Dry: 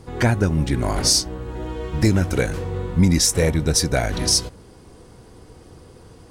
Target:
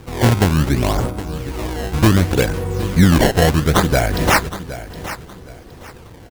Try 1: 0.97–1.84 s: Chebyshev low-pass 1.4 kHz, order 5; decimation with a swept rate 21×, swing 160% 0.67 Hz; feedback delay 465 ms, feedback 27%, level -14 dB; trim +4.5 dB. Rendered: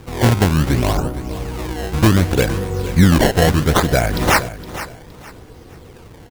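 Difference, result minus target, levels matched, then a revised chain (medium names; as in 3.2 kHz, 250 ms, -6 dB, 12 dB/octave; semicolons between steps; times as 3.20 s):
echo 301 ms early
0.97–1.84 s: Chebyshev low-pass 1.4 kHz, order 5; decimation with a swept rate 21×, swing 160% 0.67 Hz; feedback delay 766 ms, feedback 27%, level -14 dB; trim +4.5 dB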